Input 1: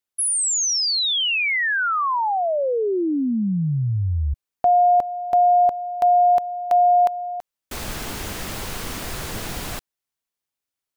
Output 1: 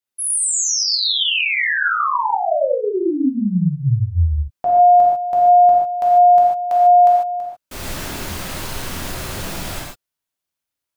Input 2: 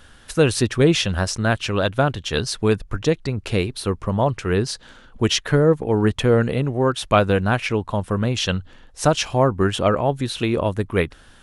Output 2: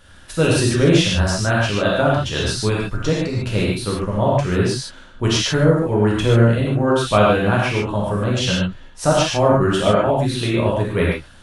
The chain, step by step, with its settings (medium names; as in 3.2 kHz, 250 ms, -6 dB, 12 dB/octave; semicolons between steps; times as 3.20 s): gated-style reverb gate 170 ms flat, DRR -5 dB; trim -3.5 dB